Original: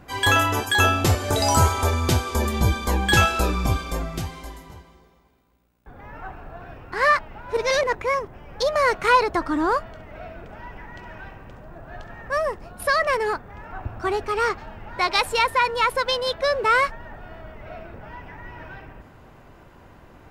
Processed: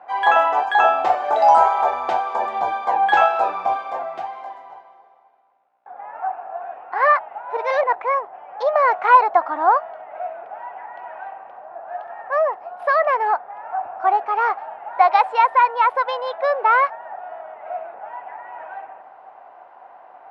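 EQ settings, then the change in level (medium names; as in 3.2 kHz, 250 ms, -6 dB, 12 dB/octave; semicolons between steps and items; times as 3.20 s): resonant high-pass 750 Hz, resonance Q 6.3; low-pass 1.9 kHz 12 dB/octave; 0.0 dB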